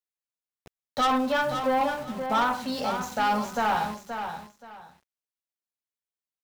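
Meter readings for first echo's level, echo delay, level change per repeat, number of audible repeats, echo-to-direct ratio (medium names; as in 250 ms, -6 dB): -8.0 dB, 526 ms, -12.5 dB, 2, -8.0 dB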